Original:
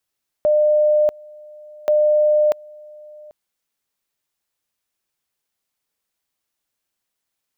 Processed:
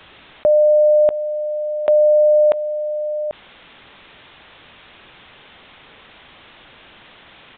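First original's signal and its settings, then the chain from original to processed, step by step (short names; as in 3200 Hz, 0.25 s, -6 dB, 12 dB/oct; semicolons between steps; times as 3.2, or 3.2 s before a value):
two-level tone 603 Hz -12 dBFS, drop 25.5 dB, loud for 0.64 s, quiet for 0.79 s, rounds 2
in parallel at +2.5 dB: limiter -22.5 dBFS; on the sum: downsampling 8000 Hz; fast leveller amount 50%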